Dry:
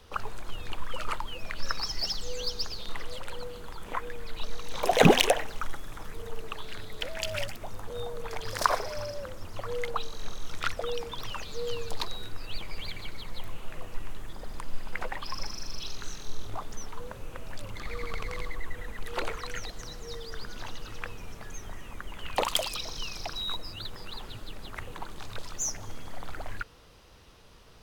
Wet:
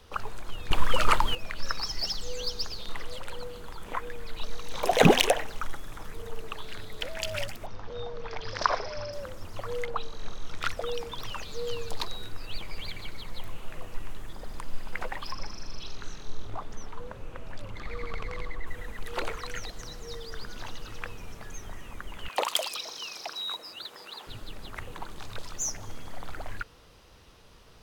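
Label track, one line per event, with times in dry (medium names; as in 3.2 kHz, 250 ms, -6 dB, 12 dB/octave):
0.710000	1.350000	gain +10.5 dB
7.660000	9.130000	elliptic low-pass 5.6 kHz, stop band 80 dB
9.830000	10.600000	treble shelf 4.9 kHz -> 8.2 kHz -11.5 dB
15.320000	18.670000	low-pass 3.2 kHz 6 dB/octave
22.280000	24.270000	high-pass 390 Hz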